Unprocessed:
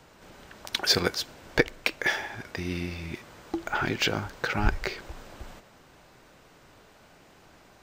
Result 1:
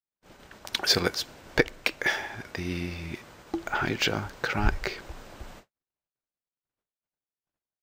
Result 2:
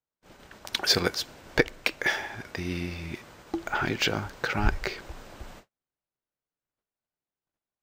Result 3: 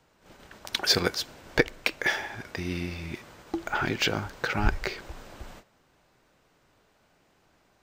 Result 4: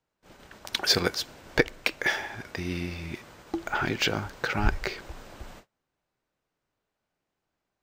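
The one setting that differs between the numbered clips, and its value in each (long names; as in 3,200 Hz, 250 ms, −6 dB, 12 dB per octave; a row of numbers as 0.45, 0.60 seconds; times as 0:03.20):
noise gate, range: −55, −42, −10, −28 decibels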